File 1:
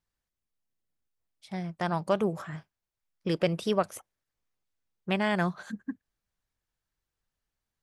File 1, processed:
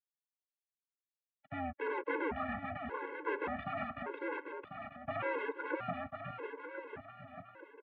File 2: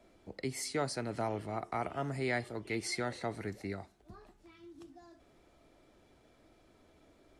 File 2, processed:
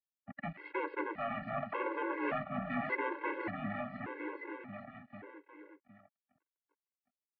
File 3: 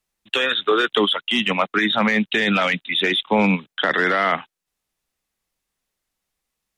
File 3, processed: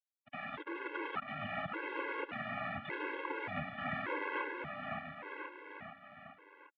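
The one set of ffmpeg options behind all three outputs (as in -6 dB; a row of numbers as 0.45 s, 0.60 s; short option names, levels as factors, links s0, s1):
-af "agate=range=0.0224:threshold=0.002:ratio=3:detection=peak,apsyclip=2.51,aresample=11025,aeval=exprs='sgn(val(0))*max(abs(val(0))-0.0119,0)':c=same,aresample=44100,aeval=exprs='(tanh(11.2*val(0)+0.45)-tanh(0.45))/11.2':c=same,aeval=exprs='0.0316*(abs(mod(val(0)/0.0316+3,4)-2)-1)':c=same,aecho=1:1:550|1045|1490|1891|2252:0.631|0.398|0.251|0.158|0.1,highpass=f=270:t=q:w=0.5412,highpass=f=270:t=q:w=1.307,lowpass=f=2400:t=q:w=0.5176,lowpass=f=2400:t=q:w=0.7071,lowpass=f=2400:t=q:w=1.932,afreqshift=-91,afftfilt=real='re*gt(sin(2*PI*0.86*pts/sr)*(1-2*mod(floor(b*sr/1024/280),2)),0)':imag='im*gt(sin(2*PI*0.86*pts/sr)*(1-2*mod(floor(b*sr/1024/280),2)),0)':win_size=1024:overlap=0.75,volume=1.78"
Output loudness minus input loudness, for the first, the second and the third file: -9.5 LU, -1.0 LU, -21.5 LU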